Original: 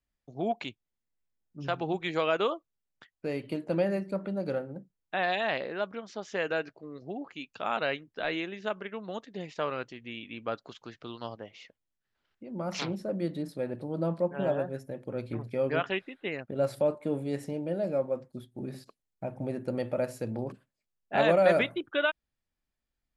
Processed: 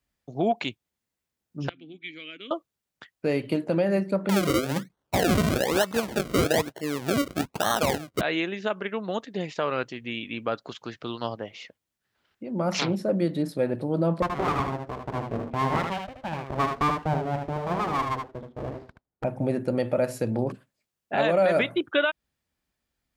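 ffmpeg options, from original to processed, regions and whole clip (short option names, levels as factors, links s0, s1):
-filter_complex "[0:a]asettb=1/sr,asplit=3[s0][s1][s2];[s0]atrim=end=1.694[s3];[s1]atrim=start=1.69:end=2.51,asetpts=PTS-STARTPTS,afade=t=in:d=0.004:c=qsin,afade=t=out:st=0.816:d=0.004:c=qsin,asplit=3[s4][s5][s6];[s4]bandpass=f=270:t=q:w=8,volume=1[s7];[s5]bandpass=f=2290:t=q:w=8,volume=0.501[s8];[s6]bandpass=f=3010:t=q:w=8,volume=0.355[s9];[s7][s8][s9]amix=inputs=3:normalize=0,equalizer=f=410:w=0.37:g=-8[s10];[s2]atrim=start=2.506[s11];[s3][s10]acrossfade=d=0.004:c1=hsin:c2=qsin[s12];[s12][s11]acrossfade=d=0.004:c1=qsin:c2=hsin,asettb=1/sr,asplit=3[s13][s14][s15];[s13]atrim=end=4.294[s16];[s14]atrim=start=4.29:end=8.21,asetpts=PTS-STARTPTS,afade=t=in:d=0.004:c=qsin,afade=t=out:st=3.916:d=0.004:c=qsin,acrusher=samples=35:mix=1:aa=0.000001:lfo=1:lforange=35:lforate=1.1,acontrast=47[s17];[s15]atrim=start=8.206[s18];[s16][s17]acrossfade=d=0.004:c1=hsin:c2=qsin[s19];[s19][s18]acrossfade=d=0.004:c1=qsin:c2=hsin,asettb=1/sr,asplit=3[s20][s21][s22];[s20]atrim=end=14.224[s23];[s21]atrim=start=14.22:end=19.24,asetpts=PTS-STARTPTS,afade=t=in:d=0.004:c=qsin,afade=t=out:st=5.016:d=0.004:c=qsin,lowpass=1100,aeval=exprs='abs(val(0))':c=same,aecho=1:1:76:0.531,atrim=end_sample=221382[s24];[s22]atrim=start=19.236[s25];[s23][s24]acrossfade=d=0.004:c1=hsin:c2=qsin[s26];[s26][s25]acrossfade=d=0.004:c1=qsin:c2=hsin,highpass=56,alimiter=limit=0.0841:level=0:latency=1:release=167,volume=2.51"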